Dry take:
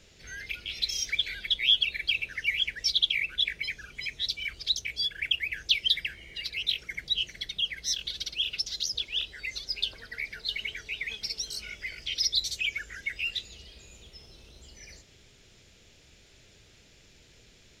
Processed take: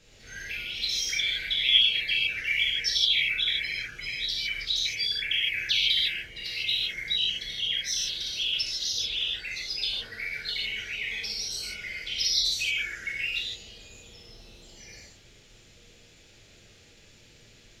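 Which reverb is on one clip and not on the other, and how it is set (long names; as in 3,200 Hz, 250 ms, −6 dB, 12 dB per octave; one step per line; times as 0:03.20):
reverb whose tail is shaped and stops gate 180 ms flat, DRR −6 dB
level −4 dB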